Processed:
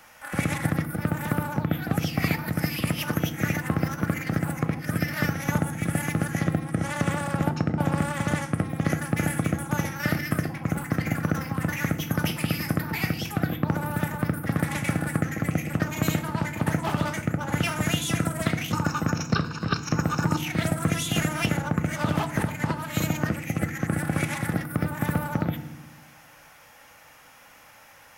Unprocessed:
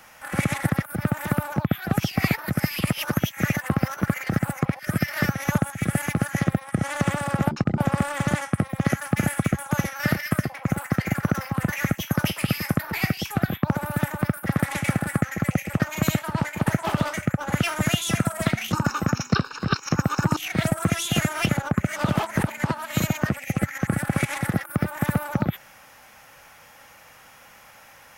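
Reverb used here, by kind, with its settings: FDN reverb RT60 0.93 s, low-frequency decay 1.55×, high-frequency decay 0.65×, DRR 9.5 dB; trim -2.5 dB

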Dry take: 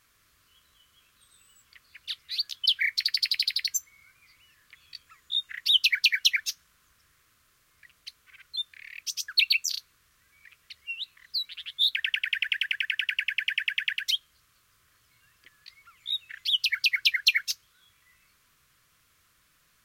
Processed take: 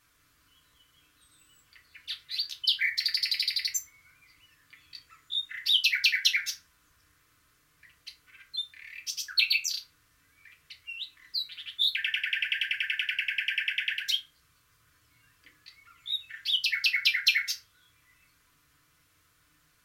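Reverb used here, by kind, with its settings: FDN reverb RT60 0.45 s, low-frequency decay 1.45×, high-frequency decay 0.5×, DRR -0.5 dB; trim -3.5 dB

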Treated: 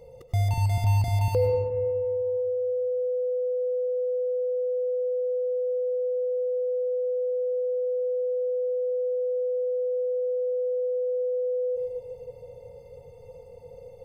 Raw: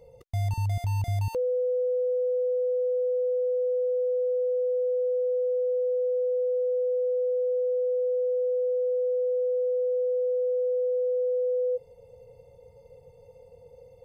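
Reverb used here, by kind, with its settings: algorithmic reverb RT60 2.1 s, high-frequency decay 0.45×, pre-delay 60 ms, DRR 3 dB; trim +4 dB

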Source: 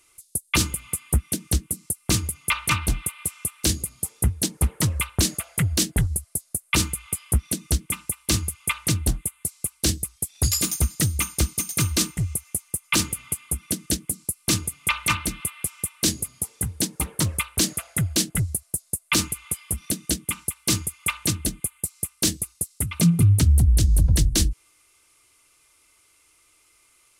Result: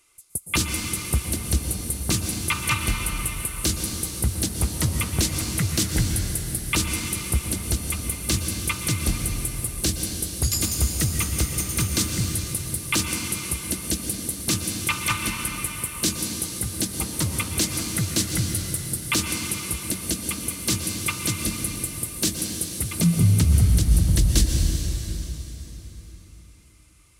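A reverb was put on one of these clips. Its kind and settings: plate-style reverb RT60 4.2 s, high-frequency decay 0.85×, pre-delay 105 ms, DRR 2 dB; trim -2 dB

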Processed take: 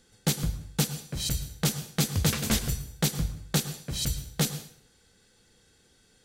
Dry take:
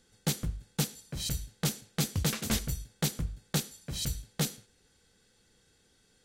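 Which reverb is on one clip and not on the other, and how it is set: plate-style reverb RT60 0.52 s, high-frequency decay 0.9×, pre-delay 95 ms, DRR 12 dB; trim +4 dB

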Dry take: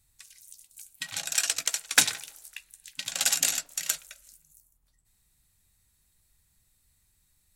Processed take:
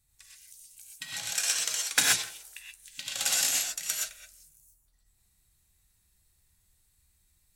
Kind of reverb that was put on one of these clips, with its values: gated-style reverb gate 150 ms rising, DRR -2.5 dB; trim -5 dB

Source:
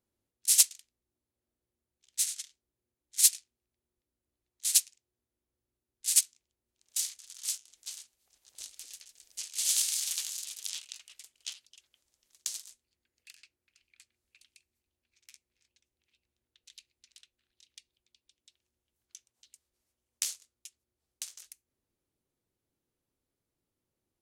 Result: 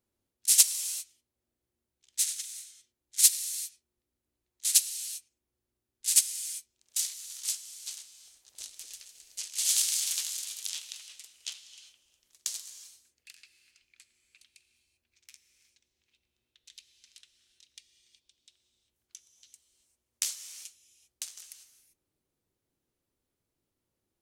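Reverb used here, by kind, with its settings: gated-style reverb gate 420 ms flat, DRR 9.5 dB; trim +1.5 dB

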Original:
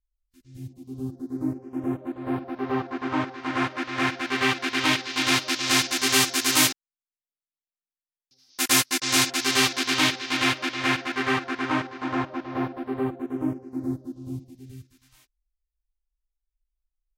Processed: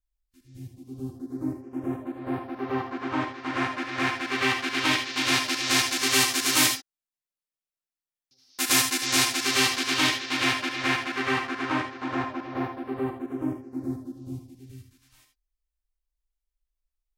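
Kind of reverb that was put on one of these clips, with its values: gated-style reverb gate 100 ms rising, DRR 6 dB; trim -2 dB

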